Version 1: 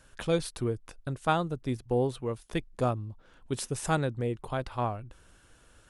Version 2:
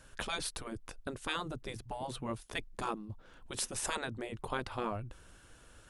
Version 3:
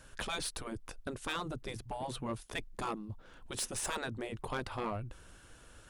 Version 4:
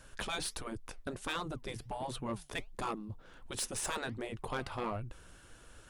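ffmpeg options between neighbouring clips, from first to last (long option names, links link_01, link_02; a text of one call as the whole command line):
ffmpeg -i in.wav -af "afftfilt=real='re*lt(hypot(re,im),0.126)':imag='im*lt(hypot(re,im),0.126)':win_size=1024:overlap=0.75,volume=1dB" out.wav
ffmpeg -i in.wav -af "asoftclip=type=tanh:threshold=-30dB,volume=1.5dB" out.wav
ffmpeg -i in.wav -af "flanger=delay=0.8:depth=6.7:regen=86:speed=1.4:shape=triangular,volume=4.5dB" out.wav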